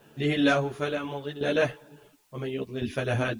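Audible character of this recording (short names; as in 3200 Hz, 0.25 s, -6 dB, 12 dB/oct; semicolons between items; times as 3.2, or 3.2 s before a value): tremolo saw down 0.71 Hz, depth 75%; a quantiser's noise floor 12-bit, dither triangular; a shimmering, thickened sound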